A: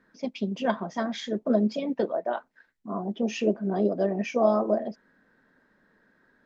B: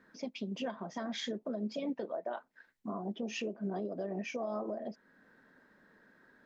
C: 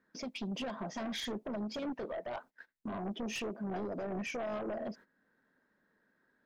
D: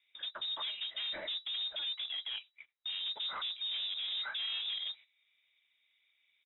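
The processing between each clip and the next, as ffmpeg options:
-af "acompressor=threshold=-24dB:ratio=6,alimiter=level_in=5dB:limit=-24dB:level=0:latency=1:release=391,volume=-5dB,lowshelf=f=79:g=-7.5,volume=1dB"
-af "aeval=exprs='0.0447*(cos(1*acos(clip(val(0)/0.0447,-1,1)))-cos(1*PI/2))+0.00562*(cos(2*acos(clip(val(0)/0.0447,-1,1)))-cos(2*PI/2))+0.00891*(cos(5*acos(clip(val(0)/0.0447,-1,1)))-cos(5*PI/2))':c=same,agate=range=-17dB:threshold=-51dB:ratio=16:detection=peak,alimiter=level_in=9dB:limit=-24dB:level=0:latency=1:release=160,volume=-9dB"
-af "aresample=16000,acrusher=bits=4:mode=log:mix=0:aa=0.000001,aresample=44100,lowpass=f=3.3k:t=q:w=0.5098,lowpass=f=3.3k:t=q:w=0.6013,lowpass=f=3.3k:t=q:w=0.9,lowpass=f=3.3k:t=q:w=2.563,afreqshift=-3900"

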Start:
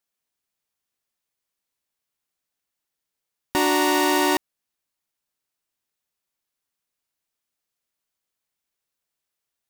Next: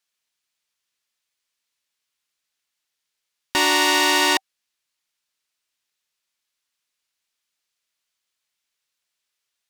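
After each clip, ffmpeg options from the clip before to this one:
-af "equalizer=f=3.6k:w=0.3:g=13,bandreject=f=770:w=18,volume=-5dB"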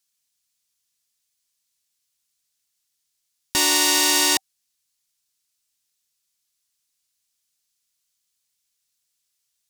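-af "bass=f=250:g=11,treble=f=4k:g=14,volume=-6dB"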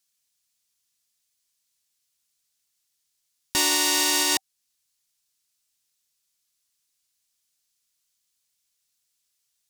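-af "alimiter=limit=-6dB:level=0:latency=1:release=363"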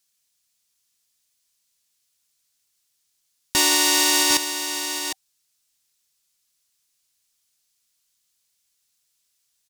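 -af "aecho=1:1:756:0.355,volume=3.5dB"

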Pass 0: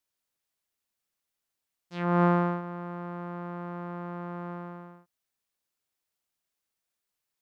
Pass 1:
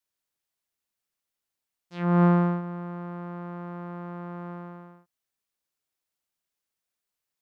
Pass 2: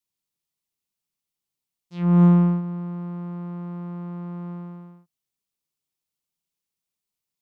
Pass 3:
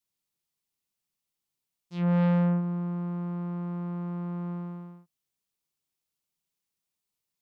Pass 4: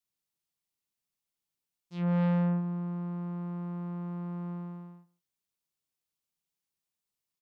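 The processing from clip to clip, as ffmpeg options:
-af "adynamicequalizer=threshold=0.0112:dfrequency=190:dqfactor=0.98:tfrequency=190:tqfactor=0.98:attack=5:release=100:ratio=0.375:range=3.5:mode=boostabove:tftype=bell,volume=-1.5dB"
-af "aeval=exprs='0.282*(cos(1*acos(clip(val(0)/0.282,-1,1)))-cos(1*PI/2))+0.00178*(cos(8*acos(clip(val(0)/0.282,-1,1)))-cos(8*PI/2))':c=same,equalizer=f=160:t=o:w=0.67:g=7,equalizer=f=630:t=o:w=0.67:g=-6,equalizer=f=1.6k:t=o:w=0.67:g=-9"
-af "asoftclip=type=tanh:threshold=-21.5dB"
-af "aecho=1:1:150:0.0794,volume=-3.5dB"

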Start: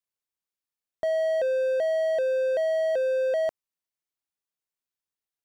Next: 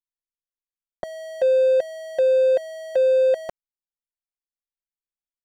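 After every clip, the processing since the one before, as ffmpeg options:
-af "anlmdn=0.251,aecho=1:1:5.5:0.83,volume=3.5dB"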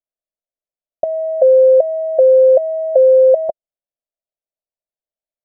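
-af "lowpass=f=630:t=q:w=6.8,volume=-1dB"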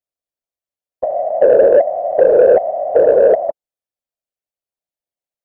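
-af "afftfilt=real='hypot(re,im)*cos(2*PI*random(0))':imag='hypot(re,im)*sin(2*PI*random(1))':win_size=512:overlap=0.75,acontrast=38,volume=1dB"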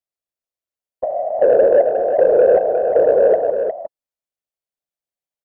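-af "aecho=1:1:359:0.447,volume=-3dB"

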